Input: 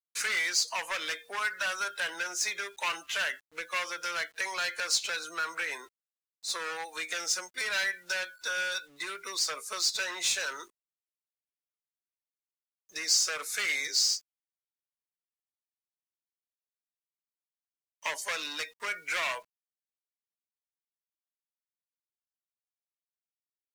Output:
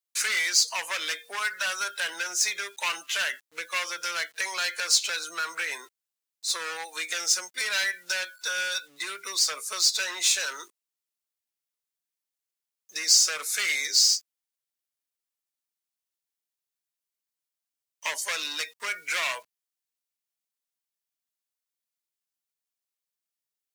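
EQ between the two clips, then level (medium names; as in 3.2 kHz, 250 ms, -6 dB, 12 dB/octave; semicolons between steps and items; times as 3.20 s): high-pass 140 Hz 6 dB/octave; treble shelf 2.6 kHz +7.5 dB; 0.0 dB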